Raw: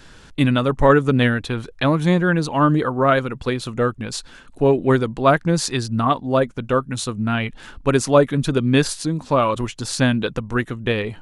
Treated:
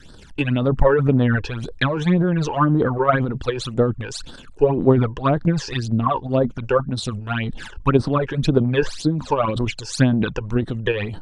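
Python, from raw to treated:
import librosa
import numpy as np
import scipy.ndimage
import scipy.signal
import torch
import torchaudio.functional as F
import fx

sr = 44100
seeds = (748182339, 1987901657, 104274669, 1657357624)

y = fx.phaser_stages(x, sr, stages=12, low_hz=200.0, high_hz=2400.0, hz=1.9, feedback_pct=35)
y = fx.transient(y, sr, attack_db=7, sustain_db=11)
y = fx.env_lowpass_down(y, sr, base_hz=2000.0, full_db=-11.0)
y = F.gain(torch.from_numpy(y), -2.5).numpy()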